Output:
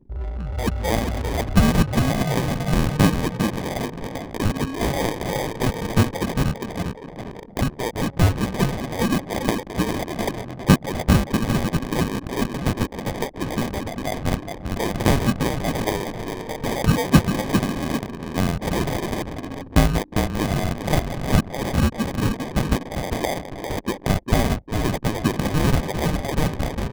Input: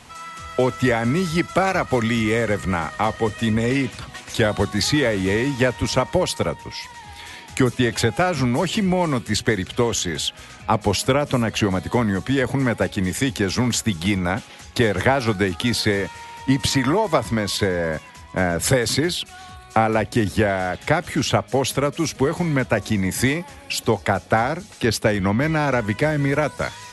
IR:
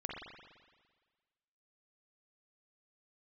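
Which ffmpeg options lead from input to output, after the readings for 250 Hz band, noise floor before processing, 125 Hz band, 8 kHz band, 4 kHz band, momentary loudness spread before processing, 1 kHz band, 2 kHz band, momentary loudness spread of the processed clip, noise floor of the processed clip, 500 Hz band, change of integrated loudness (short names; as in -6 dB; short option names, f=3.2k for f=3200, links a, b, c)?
-0.5 dB, -43 dBFS, +1.5 dB, -5.0 dB, -5.0 dB, 8 LU, -3.0 dB, -5.5 dB, 9 LU, -38 dBFS, -5.0 dB, -2.0 dB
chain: -filter_complex "[0:a]highpass=f=1.2k:t=q:w=7.6,asplit=2[a][b];[b]asplit=5[c][d][e][f][g];[c]adelay=400,afreqshift=-36,volume=-6dB[h];[d]adelay=800,afreqshift=-72,volume=-14.4dB[i];[e]adelay=1200,afreqshift=-108,volume=-22.8dB[j];[f]adelay=1600,afreqshift=-144,volume=-31.2dB[k];[g]adelay=2000,afreqshift=-180,volume=-39.6dB[l];[h][i][j][k][l]amix=inputs=5:normalize=0[m];[a][m]amix=inputs=2:normalize=0,acrusher=samples=32:mix=1:aa=0.000001,anlmdn=15.8,volume=-3dB"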